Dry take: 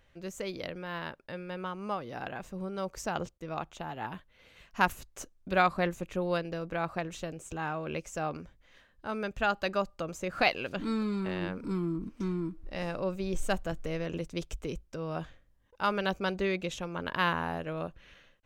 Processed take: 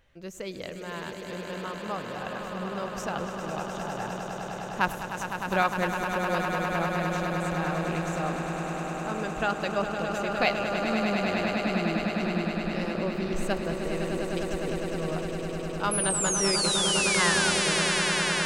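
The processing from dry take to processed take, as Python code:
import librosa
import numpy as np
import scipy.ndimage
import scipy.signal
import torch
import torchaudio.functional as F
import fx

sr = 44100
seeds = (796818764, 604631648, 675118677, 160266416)

y = fx.spec_paint(x, sr, seeds[0], shape='fall', start_s=15.91, length_s=1.6, low_hz=1400.0, high_hz=11000.0, level_db=-29.0)
y = fx.echo_swell(y, sr, ms=102, loudest=8, wet_db=-9.0)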